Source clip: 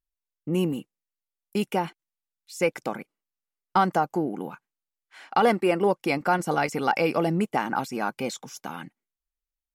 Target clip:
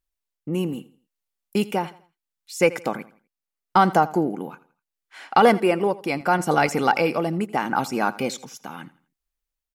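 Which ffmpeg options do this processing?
-filter_complex "[0:a]tremolo=f=0.75:d=0.52,asplit=2[a][b];[b]aecho=0:1:83|166|249:0.112|0.0393|0.0137[c];[a][c]amix=inputs=2:normalize=0,volume=5.5dB"

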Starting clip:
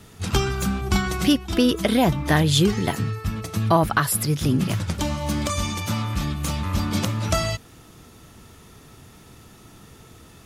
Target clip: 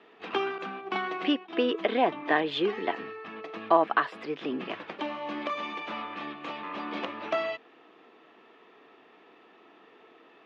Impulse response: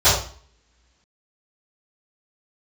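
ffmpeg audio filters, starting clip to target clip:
-filter_complex "[0:a]highpass=f=370:w=0.5412,highpass=f=370:w=1.3066,equalizer=f=380:t=q:w=4:g=-3,equalizer=f=560:t=q:w=4:g=-7,equalizer=f=890:t=q:w=4:g=-5,equalizer=f=1.4k:t=q:w=4:g=-9,equalizer=f=2.1k:t=q:w=4:g=-5,lowpass=f=2.5k:w=0.5412,lowpass=f=2.5k:w=1.3066,asettb=1/sr,asplit=3[a][b][c];[a]atrim=end=0.584[d];[b]atrim=start=0.58:end=1.7,asetpts=PTS-STARTPTS,afade=t=in:d=0.004:c=qsin,afade=t=out:st=1.116:d=0.004:c=qsin,agate=range=-33dB:threshold=-35dB:ratio=3:detection=peak[e];[c]atrim=start=1.696[f];[d][e]acrossfade=d=0.004:c1=hsin:c2=qsin[g];[g][f]acrossfade=d=0.004:c1=qsin:c2=hsin,volume=2dB"

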